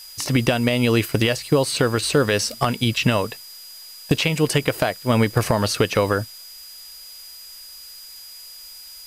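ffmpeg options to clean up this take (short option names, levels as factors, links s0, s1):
-af "bandreject=f=4900:w=30,afftdn=nr=25:nf=-41"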